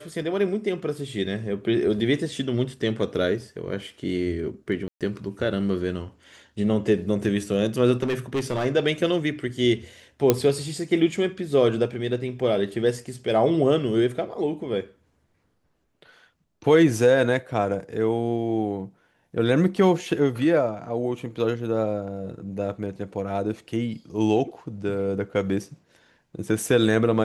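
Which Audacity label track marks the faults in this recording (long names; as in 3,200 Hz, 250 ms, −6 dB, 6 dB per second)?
4.880000	5.010000	drop-out 127 ms
8.020000	8.660000	clipping −20.5 dBFS
10.300000	10.300000	click −3 dBFS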